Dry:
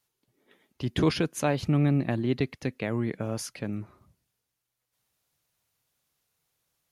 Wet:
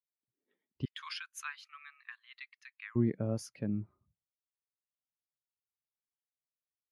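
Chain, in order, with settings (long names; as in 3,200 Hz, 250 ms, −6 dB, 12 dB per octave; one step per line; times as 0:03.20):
0:00.85–0:02.96: Butterworth high-pass 1,100 Hz 48 dB per octave
every bin expanded away from the loudest bin 1.5 to 1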